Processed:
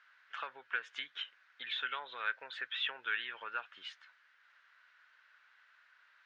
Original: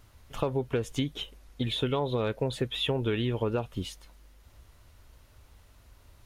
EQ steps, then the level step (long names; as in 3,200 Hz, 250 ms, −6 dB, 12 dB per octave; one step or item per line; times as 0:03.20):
four-pole ladder band-pass 1,700 Hz, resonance 70%
high-frequency loss of the air 110 metres
high-shelf EQ 2,100 Hz +7 dB
+8.0 dB